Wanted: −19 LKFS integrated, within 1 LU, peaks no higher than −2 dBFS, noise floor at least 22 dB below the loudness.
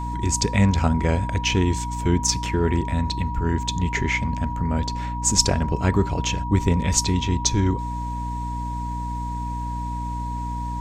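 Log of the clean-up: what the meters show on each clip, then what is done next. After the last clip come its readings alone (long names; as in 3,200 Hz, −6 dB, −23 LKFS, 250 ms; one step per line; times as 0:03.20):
mains hum 60 Hz; hum harmonics up to 300 Hz; level of the hum −27 dBFS; interfering tone 960 Hz; level of the tone −30 dBFS; integrated loudness −23.5 LKFS; sample peak −3.0 dBFS; target loudness −19.0 LKFS
→ hum removal 60 Hz, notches 5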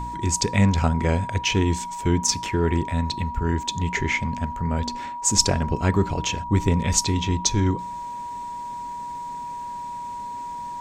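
mains hum none found; interfering tone 960 Hz; level of the tone −30 dBFS
→ notch filter 960 Hz, Q 30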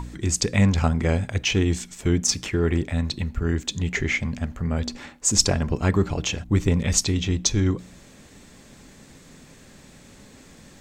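interfering tone none found; integrated loudness −23.5 LKFS; sample peak −4.0 dBFS; target loudness −19.0 LKFS
→ level +4.5 dB
brickwall limiter −2 dBFS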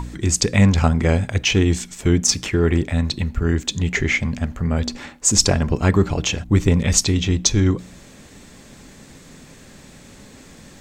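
integrated loudness −19.0 LKFS; sample peak −2.0 dBFS; background noise floor −45 dBFS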